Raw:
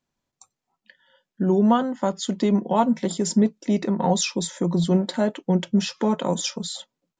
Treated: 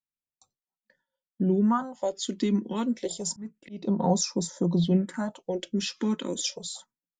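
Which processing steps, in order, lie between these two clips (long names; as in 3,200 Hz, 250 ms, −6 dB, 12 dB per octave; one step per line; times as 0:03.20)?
0:03.20–0:03.87: volume swells 316 ms
all-pass phaser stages 4, 0.29 Hz, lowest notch 110–2,900 Hz
noise gate with hold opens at −42 dBFS
level −3 dB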